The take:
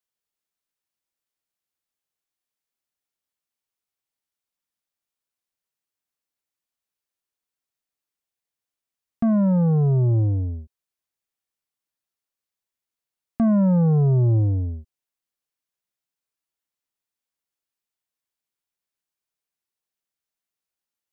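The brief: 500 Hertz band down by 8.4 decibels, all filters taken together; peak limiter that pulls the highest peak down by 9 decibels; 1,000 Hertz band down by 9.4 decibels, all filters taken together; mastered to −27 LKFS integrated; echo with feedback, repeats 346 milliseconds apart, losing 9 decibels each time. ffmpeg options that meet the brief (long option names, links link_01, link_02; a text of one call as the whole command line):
ffmpeg -i in.wav -af "equalizer=frequency=500:width_type=o:gain=-8.5,equalizer=frequency=1000:width_type=o:gain=-9,alimiter=level_in=0.5dB:limit=-24dB:level=0:latency=1,volume=-0.5dB,aecho=1:1:346|692|1038|1384:0.355|0.124|0.0435|0.0152,volume=2dB" out.wav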